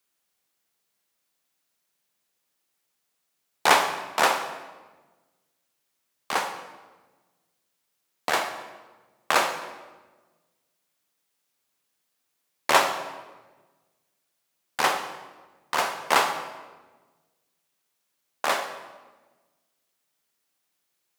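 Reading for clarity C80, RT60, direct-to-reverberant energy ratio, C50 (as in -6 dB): 10.0 dB, 1.3 s, 7.0 dB, 8.0 dB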